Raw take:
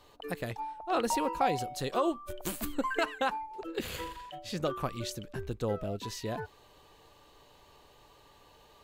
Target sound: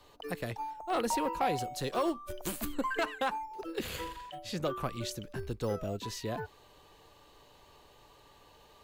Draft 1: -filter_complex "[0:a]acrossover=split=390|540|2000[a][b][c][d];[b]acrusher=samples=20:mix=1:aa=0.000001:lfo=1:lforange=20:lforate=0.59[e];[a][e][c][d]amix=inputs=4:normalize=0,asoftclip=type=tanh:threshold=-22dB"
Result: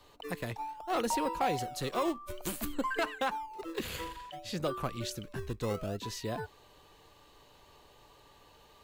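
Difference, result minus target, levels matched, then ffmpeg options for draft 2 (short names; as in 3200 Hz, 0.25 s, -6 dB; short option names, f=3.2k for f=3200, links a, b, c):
decimation with a swept rate: distortion +12 dB
-filter_complex "[0:a]acrossover=split=390|540|2000[a][b][c][d];[b]acrusher=samples=6:mix=1:aa=0.000001:lfo=1:lforange=6:lforate=0.59[e];[a][e][c][d]amix=inputs=4:normalize=0,asoftclip=type=tanh:threshold=-22dB"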